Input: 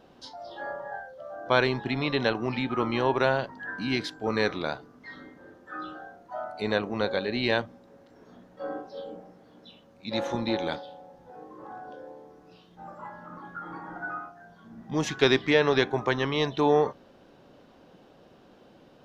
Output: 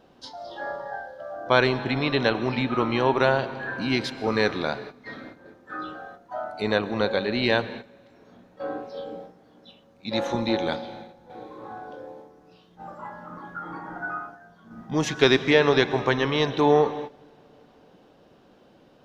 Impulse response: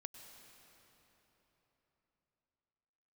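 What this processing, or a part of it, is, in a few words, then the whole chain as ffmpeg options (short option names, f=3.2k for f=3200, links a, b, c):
keyed gated reverb: -filter_complex "[0:a]asplit=3[a][b][c];[1:a]atrim=start_sample=2205[d];[b][d]afir=irnorm=-1:irlink=0[e];[c]apad=whole_len=840023[f];[e][f]sidechaingate=range=-17dB:threshold=-47dB:ratio=16:detection=peak,volume=3dB[g];[a][g]amix=inputs=2:normalize=0,volume=-1.5dB"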